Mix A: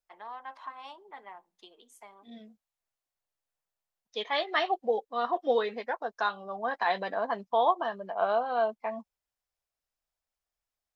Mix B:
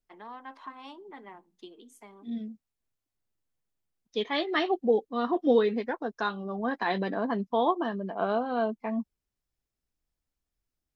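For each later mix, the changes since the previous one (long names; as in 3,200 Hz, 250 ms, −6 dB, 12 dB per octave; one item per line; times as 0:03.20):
master: add low shelf with overshoot 440 Hz +11.5 dB, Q 1.5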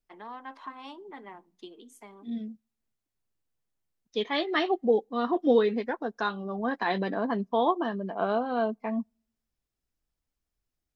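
reverb: on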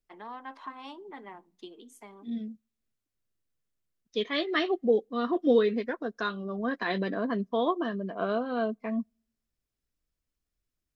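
second voice: add parametric band 840 Hz −15 dB 0.27 octaves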